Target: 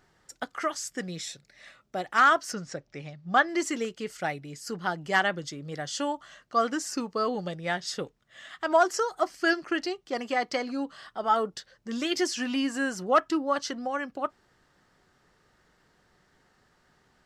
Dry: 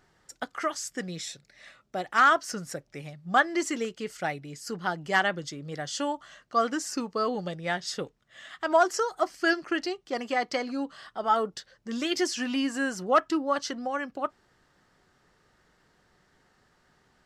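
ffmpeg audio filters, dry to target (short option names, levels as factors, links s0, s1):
-filter_complex "[0:a]asettb=1/sr,asplit=3[s0][s1][s2];[s0]atrim=end=2.534[s3];[s1]atrim=start=2.53:end=3.49,asetpts=PTS-STARTPTS,afade=t=in:d=0.004:c=qsin,afade=t=out:st=0.956:d=0.004:c=qsin,lowpass=f=6500:w=0.5412,lowpass=f=6500:w=1.3066[s4];[s2]atrim=start=3.486[s5];[s3][s4]acrossfade=d=0.004:c1=hsin:c2=qsin[s6];[s6][s5]acrossfade=d=0.004:c1=qsin:c2=hsin"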